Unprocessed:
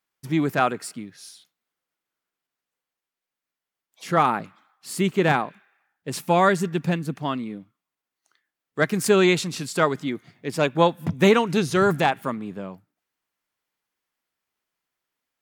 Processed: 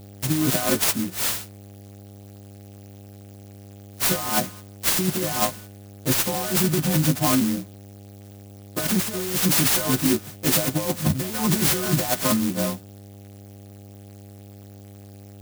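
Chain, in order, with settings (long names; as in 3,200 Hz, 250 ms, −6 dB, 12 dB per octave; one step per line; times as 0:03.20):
every partial snapped to a pitch grid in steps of 3 semitones
noise gate −48 dBFS, range −12 dB
compressor whose output falls as the input rises −26 dBFS, ratio −1
notch comb filter 430 Hz
hum with harmonics 100 Hz, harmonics 8, −48 dBFS −6 dB per octave
converter with an unsteady clock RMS 0.15 ms
level +5 dB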